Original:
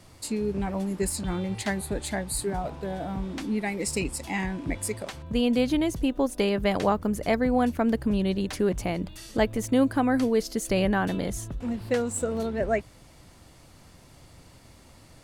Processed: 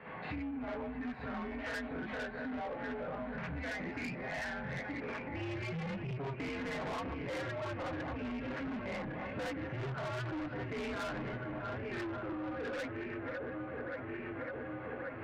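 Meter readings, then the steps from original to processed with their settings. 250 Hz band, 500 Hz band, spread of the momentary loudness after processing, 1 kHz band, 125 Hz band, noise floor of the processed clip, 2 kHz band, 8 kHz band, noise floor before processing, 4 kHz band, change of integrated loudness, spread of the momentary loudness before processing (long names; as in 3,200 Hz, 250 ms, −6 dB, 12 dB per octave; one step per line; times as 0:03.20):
−14.0 dB, −12.5 dB, 3 LU, −10.0 dB, −8.5 dB, −44 dBFS, −5.0 dB, −26.0 dB, −53 dBFS, −12.5 dB, −12.5 dB, 9 LU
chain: feedback delay that plays each chunk backwards 566 ms, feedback 71%, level −11.5 dB
low-shelf EQ 420 Hz −6 dB
single-sideband voice off tune −140 Hz 280–2,500 Hz
parametric band 1,600 Hz +2.5 dB 0.77 octaves
notch filter 360 Hz, Q 12
reverb whose tail is shaped and stops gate 90 ms rising, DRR −7.5 dB
soft clipping −27 dBFS, distortion −6 dB
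downward compressor 10 to 1, threshold −45 dBFS, peak gain reduction 16 dB
level +6.5 dB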